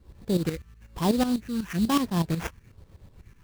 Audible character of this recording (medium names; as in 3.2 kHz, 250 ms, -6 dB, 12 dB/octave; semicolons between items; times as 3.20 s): phasing stages 4, 1.1 Hz, lowest notch 590–3800 Hz; tremolo saw up 8.1 Hz, depth 75%; aliases and images of a low sample rate 4.3 kHz, jitter 20%